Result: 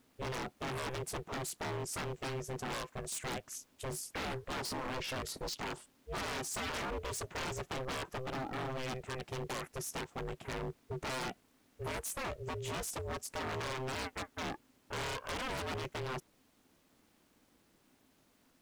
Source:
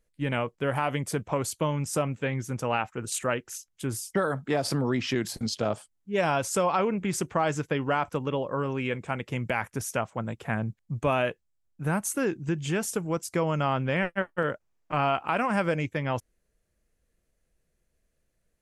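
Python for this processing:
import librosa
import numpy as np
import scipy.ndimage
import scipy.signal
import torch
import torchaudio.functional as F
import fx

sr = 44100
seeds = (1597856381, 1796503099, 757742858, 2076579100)

y = fx.dmg_noise_colour(x, sr, seeds[0], colour='pink', level_db=-64.0)
y = y * np.sin(2.0 * np.pi * 260.0 * np.arange(len(y)) / sr)
y = 10.0 ** (-29.5 / 20.0) * (np.abs((y / 10.0 ** (-29.5 / 20.0) + 3.0) % 4.0 - 2.0) - 1.0)
y = y * librosa.db_to_amplitude(-3.0)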